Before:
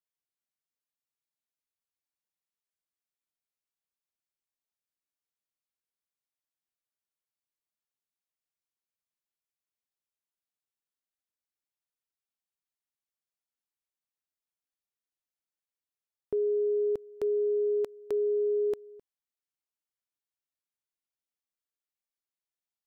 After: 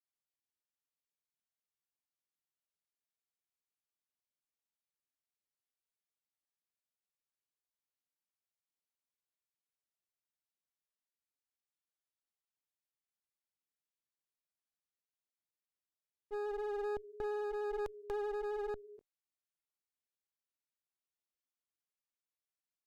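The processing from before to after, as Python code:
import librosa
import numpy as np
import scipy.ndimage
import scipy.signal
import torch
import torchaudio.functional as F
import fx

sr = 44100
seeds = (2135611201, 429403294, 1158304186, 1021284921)

y = fx.granulator(x, sr, seeds[0], grain_ms=100.0, per_s=20.0, spray_ms=19.0, spread_st=0)
y = fx.clip_asym(y, sr, top_db=-44.5, bottom_db=-27.0)
y = fx.rider(y, sr, range_db=10, speed_s=0.5)
y = y * librosa.db_to_amplitude(-3.5)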